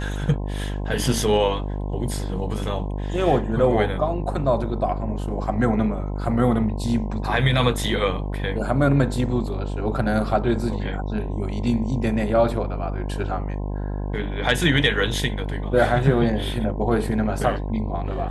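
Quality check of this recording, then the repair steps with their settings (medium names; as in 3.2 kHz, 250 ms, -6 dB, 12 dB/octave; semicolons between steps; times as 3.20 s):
buzz 50 Hz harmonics 21 -27 dBFS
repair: de-hum 50 Hz, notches 21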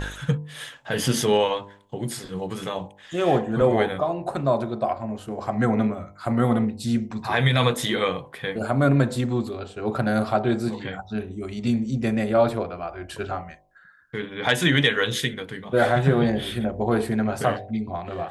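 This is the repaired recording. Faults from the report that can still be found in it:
nothing left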